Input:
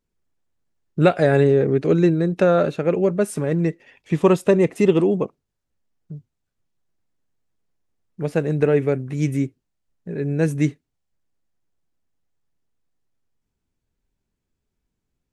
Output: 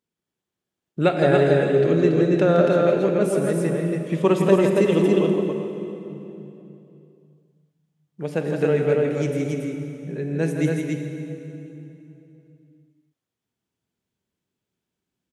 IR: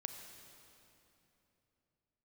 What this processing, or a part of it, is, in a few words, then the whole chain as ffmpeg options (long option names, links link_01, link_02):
stadium PA: -filter_complex "[0:a]highpass=140,equalizer=frequency=3200:width_type=o:width=0.37:gain=5,aecho=1:1:166.2|279.9:0.447|0.708[link_01];[1:a]atrim=start_sample=2205[link_02];[link_01][link_02]afir=irnorm=-1:irlink=0"